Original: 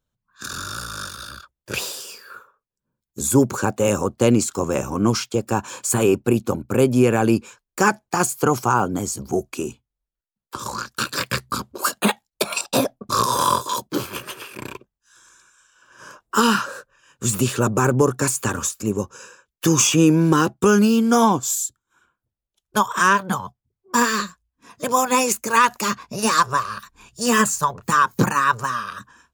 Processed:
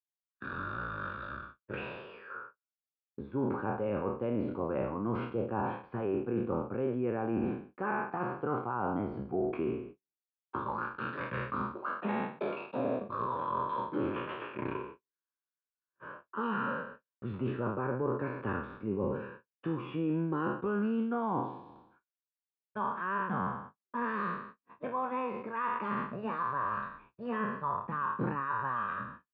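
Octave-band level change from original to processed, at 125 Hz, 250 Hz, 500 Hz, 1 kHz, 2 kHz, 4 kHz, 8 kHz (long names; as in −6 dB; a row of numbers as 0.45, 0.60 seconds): −14.5 dB, −13.5 dB, −12.5 dB, −13.0 dB, −15.0 dB, −28.5 dB, below −40 dB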